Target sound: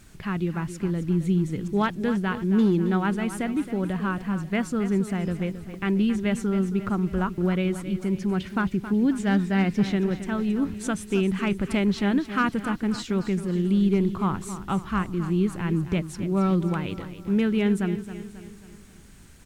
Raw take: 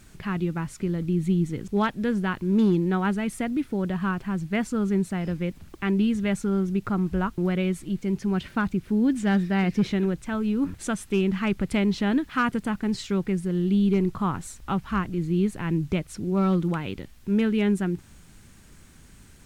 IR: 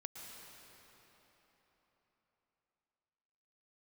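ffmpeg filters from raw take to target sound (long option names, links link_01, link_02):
-af "aecho=1:1:270|540|810|1080|1350:0.251|0.123|0.0603|0.0296|0.0145"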